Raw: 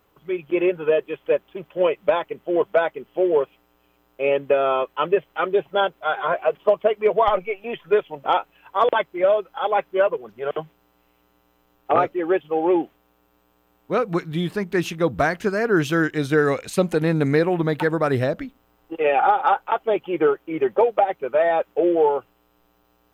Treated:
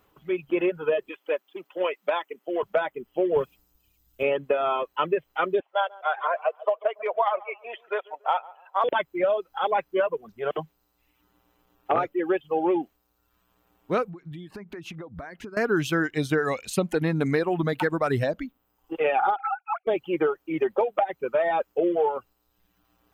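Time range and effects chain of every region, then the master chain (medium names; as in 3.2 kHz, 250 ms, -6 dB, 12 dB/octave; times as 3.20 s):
1.09–2.63 s: high-pass 270 Hz 24 dB/octave + dynamic bell 380 Hz, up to -6 dB, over -32 dBFS, Q 0.72
3.36–4.23 s: tone controls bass +12 dB, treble +10 dB + three bands expanded up and down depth 40%
5.60–8.84 s: high-pass 640 Hz 24 dB/octave + tilt EQ -3 dB/octave + filtered feedback delay 141 ms, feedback 37%, low-pass 1.3 kHz, level -11 dB
14.09–15.57 s: treble shelf 3.7 kHz -10.5 dB + compression 16:1, threshold -33 dBFS
19.36–19.87 s: formants replaced by sine waves + comb 0.8 ms, depth 67% + compression 4:1, threshold -21 dBFS
whole clip: reverb removal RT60 0.9 s; peaking EQ 500 Hz -2 dB; compression, threshold -19 dBFS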